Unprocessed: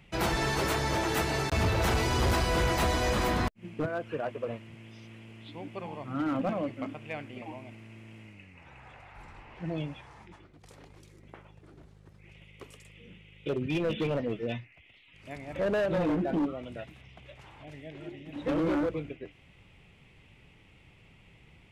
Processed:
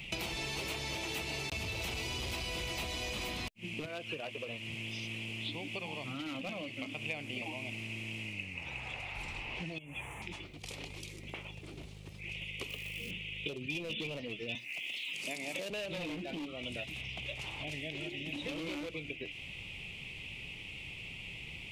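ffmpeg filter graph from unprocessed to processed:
ffmpeg -i in.wav -filter_complex "[0:a]asettb=1/sr,asplit=3[link_01][link_02][link_03];[link_01]atrim=end=9.784[link_04];[link_02]atrim=start=9.78:end=10.22,asetpts=PTS-STARTPTS,afade=type=in:duration=0.004:curve=qsin,afade=type=out:start_time=0.436:duration=0.004:curve=qsin,highshelf=frequency=7900:gain=12,acompressor=threshold=-44dB:ratio=12:attack=3.2:release=140:knee=1:detection=peak,asuperstop=centerf=4700:order=4:qfactor=0.81[link_05];[link_03]atrim=start=10.216[link_06];[link_04][link_05]acrossfade=duration=0.004:curve1=hsin:curve2=qsin[link_07];[link_07][link_06]acrossfade=duration=0.004:curve1=qsin:curve2=hsin,asettb=1/sr,asplit=3[link_08][link_09][link_10];[link_08]atrim=end=12.694[link_11];[link_09]atrim=start=12.69:end=13.11,asetpts=PTS-STARTPTS,afade=type=in:duration=0.004:curve=qsin,afade=type=out:start_time=0.416:duration=0.004:curve=qsin,lowpass=frequency=3400:width=0.5412,lowpass=frequency=3400:width=1.3066,acrusher=bits=3:mode=log:mix=0:aa=0.000001[link_12];[link_10]atrim=start=13.106[link_13];[link_11][link_12]acrossfade=duration=0.004:curve1=hsin:curve2=qsin[link_14];[link_14][link_13]acrossfade=duration=0.004:curve1=qsin:curve2=hsin,asettb=1/sr,asplit=3[link_15][link_16][link_17];[link_15]atrim=end=14.554[link_18];[link_16]atrim=start=14.55:end=15.7,asetpts=PTS-STARTPTS,afade=type=in:duration=0.004:curve=qsin,afade=type=out:start_time=1.146:duration=0.004:curve=qsin,bass=frequency=250:gain=-1,treble=frequency=4000:gain=13,acompressor=mode=upward:threshold=-45dB:ratio=2.5:attack=3.2:release=140:knee=2.83:detection=peak,highpass=frequency=180:width=0.5412,highpass=frequency=180:width=1.3066[link_19];[link_17]atrim=start=15.696[link_20];[link_18][link_19]acrossfade=duration=0.004:curve1=hsin:curve2=qsin[link_21];[link_21][link_20]acrossfade=duration=0.004:curve1=qsin:curve2=hsin,acompressor=threshold=-39dB:ratio=3,highshelf=frequency=2000:width_type=q:width=3:gain=7.5,acrossover=split=1600|4700[link_22][link_23][link_24];[link_22]acompressor=threshold=-47dB:ratio=4[link_25];[link_23]acompressor=threshold=-48dB:ratio=4[link_26];[link_24]acompressor=threshold=-55dB:ratio=4[link_27];[link_25][link_26][link_27]amix=inputs=3:normalize=0,volume=6dB" out.wav

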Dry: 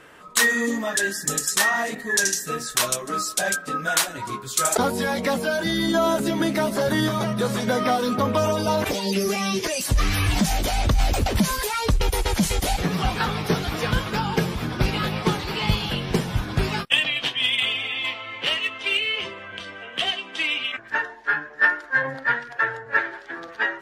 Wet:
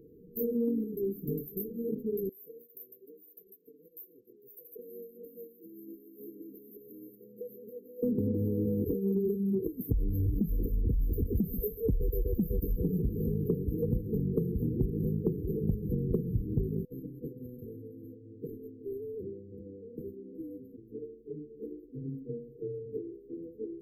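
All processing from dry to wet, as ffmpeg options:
ffmpeg -i in.wav -filter_complex "[0:a]asettb=1/sr,asplit=3[link_01][link_02][link_03];[link_01]atrim=end=2.294[link_04];[link_02]atrim=start=2.29:end=8.03,asetpts=PTS-STARTPTS,afade=type=in:duration=0.004:curve=qsin,afade=type=out:start_time=5.736:duration=0.004:curve=qsin,highpass=frequency=970:width_type=q:width=2.4,acompressor=threshold=-30dB:ratio=2:attack=3.2:release=140:knee=1:detection=peak[link_05];[link_03]atrim=start=8.026[link_06];[link_04][link_05]acrossfade=duration=0.004:curve1=hsin:curve2=qsin[link_07];[link_07][link_06]acrossfade=duration=0.004:curve1=qsin:curve2=hsin,asettb=1/sr,asplit=3[link_08][link_09][link_10];[link_08]atrim=end=11.014[link_11];[link_09]atrim=start=11.01:end=13.44,asetpts=PTS-STARTPTS,afade=type=in:duration=0.004:curve=qsin,afade=type=out:start_time=2.426:duration=0.004:curve=qsin,highshelf=frequency=11000:gain=8,aecho=1:1:136|272|408:0.158|0.0491|0.0152,atrim=end_sample=107163[link_12];[link_10]atrim=start=13.436[link_13];[link_11][link_12]acrossfade=duration=0.004:curve1=hsin:curve2=qsin[link_14];[link_14][link_13]acrossfade=duration=0.004:curve1=qsin:curve2=hsin,afftfilt=real='re*(1-between(b*sr/4096,500,12000))':imag='im*(1-between(b*sr/4096,500,12000))':win_size=4096:overlap=0.75,acompressor=threshold=-26dB:ratio=5,equalizer=frequency=8100:width_type=o:width=1.6:gain=-11" out.wav

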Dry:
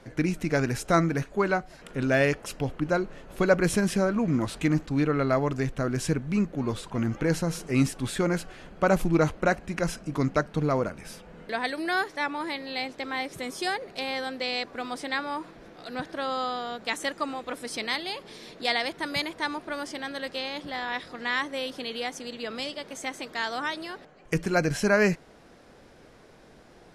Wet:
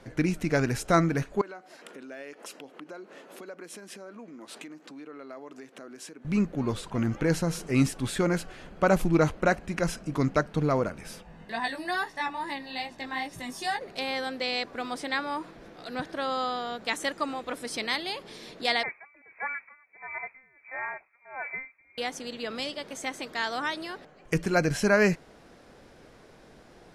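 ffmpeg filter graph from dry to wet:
ffmpeg -i in.wav -filter_complex "[0:a]asettb=1/sr,asplit=3[link_01][link_02][link_03];[link_01]atrim=end=1.414[link_04];[link_02]atrim=start=1.41:end=6.25,asetpts=PTS-STARTPTS,afade=type=in:duration=0.004:curve=qsin,afade=type=out:start_time=4.836:duration=0.004:curve=qsin,acompressor=threshold=-37dB:ratio=16:attack=3.2:release=140:knee=1:detection=peak,highpass=frequency=250:width=0.5412,highpass=frequency=250:width=1.3066[link_05];[link_03]atrim=start=6.246[link_06];[link_04][link_05]acrossfade=duration=0.004:curve1=hsin:curve2=qsin[link_07];[link_07][link_06]acrossfade=duration=0.004:curve1=qsin:curve2=hsin,asettb=1/sr,asplit=3[link_08][link_09][link_10];[link_08]atrim=end=11.234[link_11];[link_09]atrim=start=11.23:end=13.81,asetpts=PTS-STARTPTS,afade=type=in:duration=0.004:curve=qsin,afade=type=out:start_time=2.576:duration=0.004:curve=qsin,aecho=1:1:1.1:0.53,atrim=end_sample=113778,flanger=delay=17:depth=3:speed=2.4[link_12];[link_10]atrim=start=13.806[link_13];[link_11][link_12]acrossfade=duration=0.004:curve1=hsin:curve2=qsin[link_14];[link_14][link_13]acrossfade=duration=0.004:curve1=qsin:curve2=hsin,asettb=1/sr,asplit=3[link_15][link_16][link_17];[link_15]atrim=end=18.834[link_18];[link_16]atrim=start=18.83:end=21.98,asetpts=PTS-STARTPTS,afade=type=in:duration=0.004:curve=qsin,afade=type=out:start_time=3.146:duration=0.004:curve=qsin,asoftclip=type=hard:threshold=-23.5dB,lowpass=frequency=2200:width_type=q:width=0.5098,lowpass=frequency=2200:width_type=q:width=0.6013,lowpass=frequency=2200:width_type=q:width=0.9,lowpass=frequency=2200:width_type=q:width=2.563,afreqshift=-2600,aeval=exprs='val(0)*pow(10,-26*(0.5-0.5*cos(2*PI*1.5*n/s))/20)':channel_layout=same[link_19];[link_17]atrim=start=21.976[link_20];[link_18][link_19]acrossfade=duration=0.004:curve1=hsin:curve2=qsin[link_21];[link_21][link_20]acrossfade=duration=0.004:curve1=qsin:curve2=hsin" out.wav

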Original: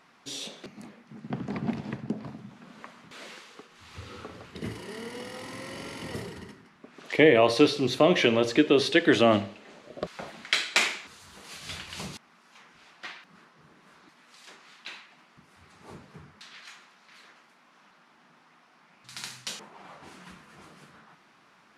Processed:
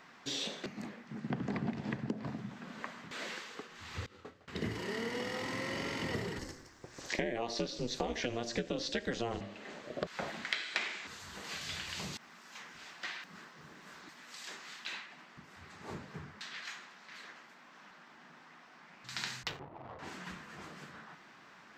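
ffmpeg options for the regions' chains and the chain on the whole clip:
ffmpeg -i in.wav -filter_complex "[0:a]asettb=1/sr,asplit=3[link_01][link_02][link_03];[link_01]atrim=end=4.064[link_04];[link_02]atrim=start=4.06:end=4.48,asetpts=PTS-STARTPTS,afade=type=in:duration=0.004:curve=qsin,afade=type=out:start_time=0.416:duration=0.004:curve=qsin,agate=range=-33dB:threshold=-33dB:ratio=3:release=100:detection=peak,asplit=2[link_05][link_06];[link_06]adelay=24,volume=-5dB[link_07];[link_05][link_07]amix=inputs=2:normalize=0,atrim=end_sample=18522[link_08];[link_03]atrim=start=4.476[link_09];[link_04][link_08]acrossfade=duration=0.004:curve1=hsin:curve2=qsin[link_10];[link_10][link_09]acrossfade=duration=0.004:curve1=qsin:curve2=hsin,asettb=1/sr,asplit=3[link_11][link_12][link_13];[link_11]atrim=end=6.394[link_14];[link_12]atrim=start=6.39:end=9.41,asetpts=PTS-STARTPTS,afade=type=in:duration=0.004:curve=qsin,afade=type=out:start_time=3.016:duration=0.004:curve=qsin,highshelf=frequency=4200:width_type=q:width=1.5:gain=11,aeval=exprs='val(0)*sin(2*PI*120*n/s)':channel_layout=same,bandreject=frequency=1300:width=26[link_15];[link_13]atrim=start=9.406[link_16];[link_14][link_15]acrossfade=duration=0.004:curve1=hsin:curve2=qsin[link_17];[link_17][link_16]acrossfade=duration=0.004:curve1=qsin:curve2=hsin,asettb=1/sr,asplit=3[link_18][link_19][link_20];[link_18]atrim=end=11.614[link_21];[link_19]atrim=start=11.61:end=14.93,asetpts=PTS-STARTPTS,afade=type=in:duration=0.004:curve=qsin,afade=type=out:start_time=3.316:duration=0.004:curve=qsin,highshelf=frequency=4800:gain=8.5,acompressor=threshold=-43dB:ratio=2:attack=3.2:release=140:knee=1:detection=peak[link_22];[link_20]atrim=start=14.926[link_23];[link_21][link_22]acrossfade=duration=0.004:curve1=hsin:curve2=qsin[link_24];[link_24][link_23]acrossfade=duration=0.004:curve1=qsin:curve2=hsin,asettb=1/sr,asplit=3[link_25][link_26][link_27];[link_25]atrim=end=19.434[link_28];[link_26]atrim=start=19.43:end=19.99,asetpts=PTS-STARTPTS,afade=type=in:duration=0.004:curve=qsin,afade=type=out:start_time=0.556:duration=0.004:curve=qsin,afreqshift=-64,equalizer=frequency=1600:width=6.5:gain=-6,adynamicsmooth=sensitivity=7.5:basefreq=590[link_29];[link_27]atrim=start=19.986[link_30];[link_28][link_29]acrossfade=duration=0.004:curve1=hsin:curve2=qsin[link_31];[link_31][link_30]acrossfade=duration=0.004:curve1=qsin:curve2=hsin,acrossover=split=5600[link_32][link_33];[link_33]acompressor=threshold=-51dB:ratio=4:attack=1:release=60[link_34];[link_32][link_34]amix=inputs=2:normalize=0,superequalizer=11b=1.41:16b=0.282,acompressor=threshold=-34dB:ratio=10,volume=2dB" out.wav

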